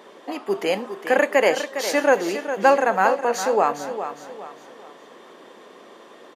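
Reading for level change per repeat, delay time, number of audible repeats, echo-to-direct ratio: -8.5 dB, 0.408 s, 3, -9.5 dB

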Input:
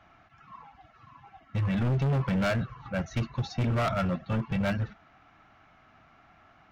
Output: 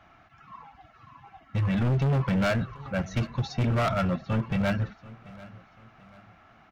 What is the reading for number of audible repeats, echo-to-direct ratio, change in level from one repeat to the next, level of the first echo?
2, -20.0 dB, -8.5 dB, -20.5 dB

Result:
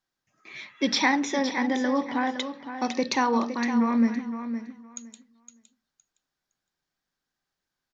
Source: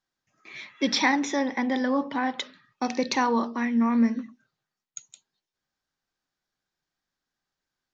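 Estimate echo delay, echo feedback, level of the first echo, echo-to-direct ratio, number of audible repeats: 0.513 s, 18%, -10.0 dB, -10.0 dB, 2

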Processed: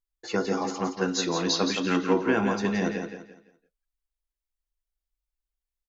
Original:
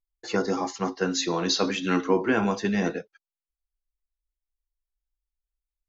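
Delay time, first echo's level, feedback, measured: 0.17 s, -7.0 dB, 31%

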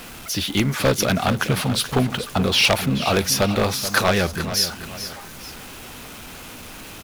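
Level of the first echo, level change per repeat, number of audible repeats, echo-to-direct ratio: -12.0 dB, -8.0 dB, 2, -11.5 dB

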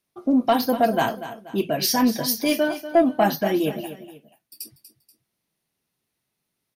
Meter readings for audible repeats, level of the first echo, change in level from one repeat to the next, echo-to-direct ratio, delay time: 2, -13.0 dB, -8.0 dB, -12.5 dB, 0.241 s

